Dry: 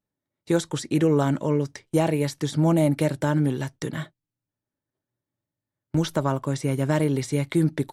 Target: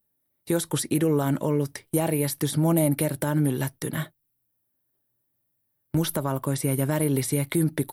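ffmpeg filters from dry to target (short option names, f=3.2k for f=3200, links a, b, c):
-af "alimiter=limit=-16dB:level=0:latency=1:release=168,aexciter=amount=5.1:drive=8.5:freq=9.6k,volume=2dB"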